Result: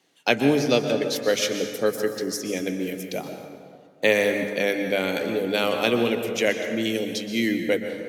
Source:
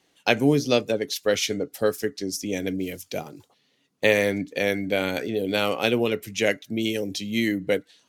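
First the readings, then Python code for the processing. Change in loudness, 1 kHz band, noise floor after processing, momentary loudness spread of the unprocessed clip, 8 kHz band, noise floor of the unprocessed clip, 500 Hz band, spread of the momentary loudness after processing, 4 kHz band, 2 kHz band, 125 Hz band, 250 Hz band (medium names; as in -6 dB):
+1.0 dB, +1.0 dB, -51 dBFS, 9 LU, +0.5 dB, -67 dBFS, +1.0 dB, 9 LU, +0.5 dB, +1.0 dB, -2.5 dB, +0.5 dB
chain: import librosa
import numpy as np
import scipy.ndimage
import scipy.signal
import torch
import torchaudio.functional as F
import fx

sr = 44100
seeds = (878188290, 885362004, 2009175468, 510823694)

y = scipy.signal.sosfilt(scipy.signal.butter(4, 120.0, 'highpass', fs=sr, output='sos'), x)
y = fx.hum_notches(y, sr, base_hz=50, count=4)
y = fx.rev_plate(y, sr, seeds[0], rt60_s=2.0, hf_ratio=0.5, predelay_ms=110, drr_db=5.5)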